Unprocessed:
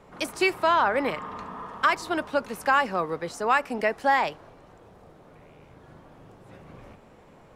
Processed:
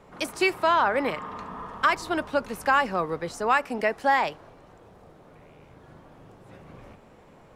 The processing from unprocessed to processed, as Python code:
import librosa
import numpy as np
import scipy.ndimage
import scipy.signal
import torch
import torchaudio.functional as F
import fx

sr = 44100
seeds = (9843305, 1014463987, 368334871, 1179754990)

y = fx.low_shelf(x, sr, hz=88.0, db=9.0, at=(1.5, 3.55))